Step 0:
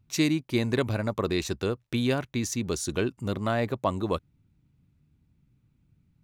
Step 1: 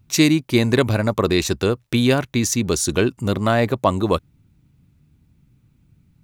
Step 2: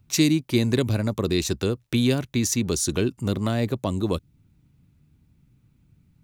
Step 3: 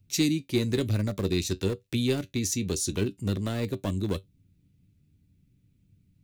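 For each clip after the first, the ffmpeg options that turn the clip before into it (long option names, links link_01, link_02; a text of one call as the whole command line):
ffmpeg -i in.wav -af "highshelf=frequency=6400:gain=4,volume=9dB" out.wav
ffmpeg -i in.wav -filter_complex "[0:a]acrossover=split=420|3000[link_01][link_02][link_03];[link_02]acompressor=threshold=-32dB:ratio=3[link_04];[link_01][link_04][link_03]amix=inputs=3:normalize=0,volume=-3dB" out.wav
ffmpeg -i in.wav -filter_complex "[0:a]flanger=delay=9.9:depth=1.1:regen=60:speed=1:shape=triangular,acrossover=split=630|1700[link_01][link_02][link_03];[link_02]acrusher=bits=4:dc=4:mix=0:aa=0.000001[link_04];[link_01][link_04][link_03]amix=inputs=3:normalize=0" out.wav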